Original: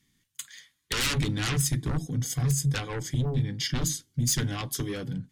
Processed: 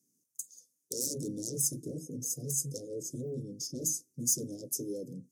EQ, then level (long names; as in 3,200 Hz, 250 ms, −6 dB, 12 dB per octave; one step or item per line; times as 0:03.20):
high-pass filter 320 Hz 12 dB per octave
Chebyshev band-stop filter 530–5,700 Hz, order 4
linear-phase brick-wall band-stop 730–2,700 Hz
0.0 dB